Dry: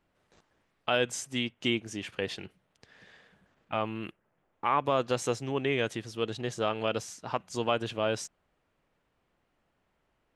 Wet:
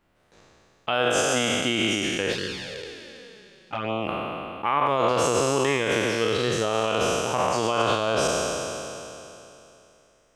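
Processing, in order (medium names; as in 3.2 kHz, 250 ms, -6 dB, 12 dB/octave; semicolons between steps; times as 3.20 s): spectral sustain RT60 2.95 s; peak limiter -16.5 dBFS, peak gain reduction 7 dB; 2.32–4.08 s: touch-sensitive flanger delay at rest 6.3 ms, full sweep at -24.5 dBFS; trim +4.5 dB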